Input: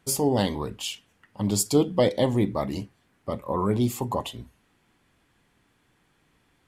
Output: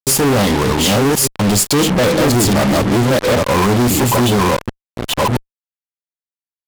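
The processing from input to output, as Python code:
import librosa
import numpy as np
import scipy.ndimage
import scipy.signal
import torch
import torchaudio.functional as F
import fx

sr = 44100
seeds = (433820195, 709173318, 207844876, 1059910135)

y = fx.reverse_delay(x, sr, ms=671, wet_db=-2)
y = fx.fuzz(y, sr, gain_db=43.0, gate_db=-37.0)
y = y * 10.0 ** (2.0 / 20.0)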